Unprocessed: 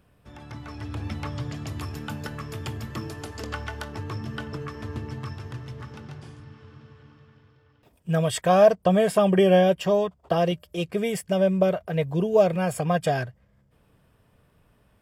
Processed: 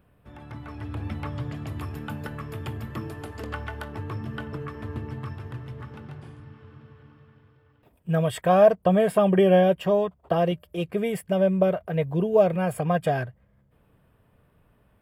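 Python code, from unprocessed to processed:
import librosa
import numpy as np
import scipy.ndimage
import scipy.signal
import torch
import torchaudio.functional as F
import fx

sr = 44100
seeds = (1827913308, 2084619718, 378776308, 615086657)

y = fx.peak_eq(x, sr, hz=5900.0, db=-13.0, octaves=1.2)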